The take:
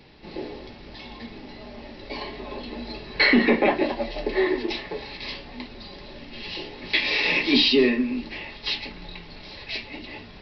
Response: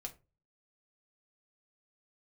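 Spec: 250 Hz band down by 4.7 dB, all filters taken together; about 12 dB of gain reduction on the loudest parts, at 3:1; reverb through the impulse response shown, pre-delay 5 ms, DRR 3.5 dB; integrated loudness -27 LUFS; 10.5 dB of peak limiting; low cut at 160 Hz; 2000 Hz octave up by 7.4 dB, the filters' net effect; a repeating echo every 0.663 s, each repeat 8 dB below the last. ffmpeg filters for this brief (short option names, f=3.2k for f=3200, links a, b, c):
-filter_complex "[0:a]highpass=160,equalizer=f=250:t=o:g=-5,equalizer=f=2k:t=o:g=8.5,acompressor=threshold=-25dB:ratio=3,alimiter=limit=-20.5dB:level=0:latency=1,aecho=1:1:663|1326|1989|2652|3315:0.398|0.159|0.0637|0.0255|0.0102,asplit=2[a][b];[1:a]atrim=start_sample=2205,adelay=5[c];[b][c]afir=irnorm=-1:irlink=0,volume=-0.5dB[d];[a][d]amix=inputs=2:normalize=0,volume=2.5dB"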